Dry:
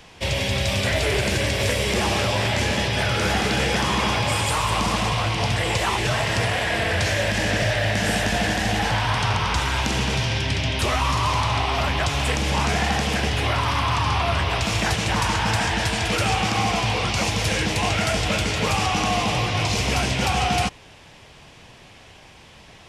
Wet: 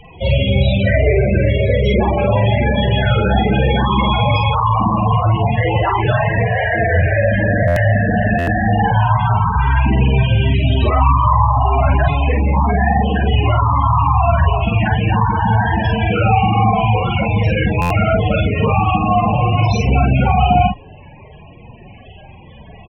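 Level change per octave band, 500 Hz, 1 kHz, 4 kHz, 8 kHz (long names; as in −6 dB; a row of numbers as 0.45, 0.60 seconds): +8.0 dB, +8.0 dB, −4.0 dB, below −15 dB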